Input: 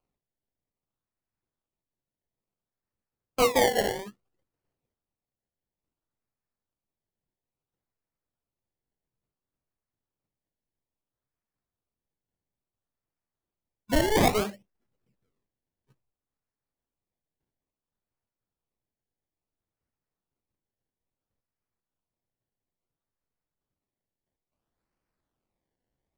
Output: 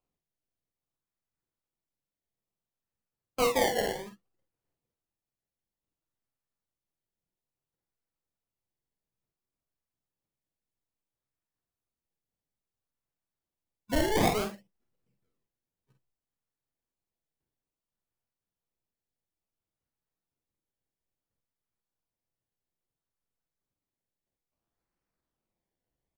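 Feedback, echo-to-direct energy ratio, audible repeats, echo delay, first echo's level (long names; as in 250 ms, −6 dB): repeats not evenly spaced, −6.0 dB, 1, 46 ms, −7.0 dB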